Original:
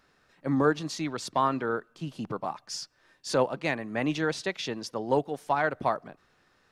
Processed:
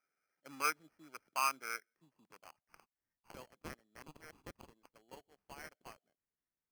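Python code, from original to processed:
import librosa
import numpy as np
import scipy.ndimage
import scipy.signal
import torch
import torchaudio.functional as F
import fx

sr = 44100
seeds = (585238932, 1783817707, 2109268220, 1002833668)

y = fx.wiener(x, sr, points=41)
y = fx.filter_sweep_bandpass(y, sr, from_hz=1300.0, to_hz=4100.0, start_s=1.53, end_s=2.87, q=5.4)
y = fx.sample_hold(y, sr, seeds[0], rate_hz=3700.0, jitter_pct=0)
y = y * librosa.db_to_amplitude(1.0)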